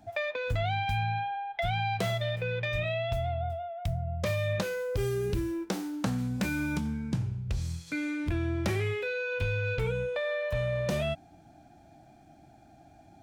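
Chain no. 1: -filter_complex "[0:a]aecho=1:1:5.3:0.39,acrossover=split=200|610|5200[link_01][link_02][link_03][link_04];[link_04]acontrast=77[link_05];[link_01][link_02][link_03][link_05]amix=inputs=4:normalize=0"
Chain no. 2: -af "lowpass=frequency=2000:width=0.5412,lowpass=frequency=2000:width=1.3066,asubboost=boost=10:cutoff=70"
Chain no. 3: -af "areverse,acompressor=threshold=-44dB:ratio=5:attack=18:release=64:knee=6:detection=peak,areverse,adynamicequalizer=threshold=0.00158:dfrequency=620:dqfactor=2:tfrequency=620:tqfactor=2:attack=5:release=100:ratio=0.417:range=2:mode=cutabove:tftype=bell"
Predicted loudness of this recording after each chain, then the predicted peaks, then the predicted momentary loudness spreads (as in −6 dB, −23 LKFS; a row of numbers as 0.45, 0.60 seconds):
−31.5, −28.0, −44.0 LKFS; −13.5, −8.5, −32.0 dBFS; 6, 9, 13 LU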